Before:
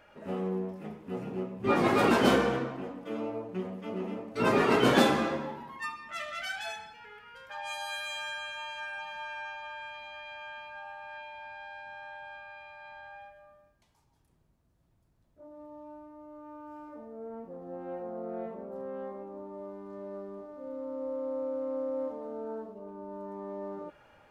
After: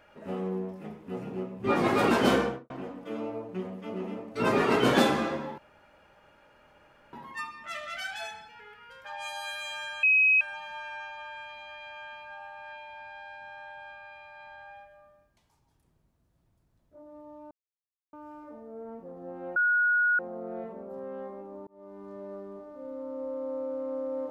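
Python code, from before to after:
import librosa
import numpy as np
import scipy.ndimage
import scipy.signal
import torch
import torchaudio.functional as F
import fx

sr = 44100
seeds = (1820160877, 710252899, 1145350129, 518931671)

y = fx.studio_fade_out(x, sr, start_s=2.38, length_s=0.32)
y = fx.edit(y, sr, fx.insert_room_tone(at_s=5.58, length_s=1.55),
    fx.bleep(start_s=8.48, length_s=0.38, hz=2540.0, db=-18.0),
    fx.silence(start_s=15.96, length_s=0.62),
    fx.insert_tone(at_s=18.01, length_s=0.63, hz=1450.0, db=-21.0),
    fx.fade_in_span(start_s=19.49, length_s=0.35), tone=tone)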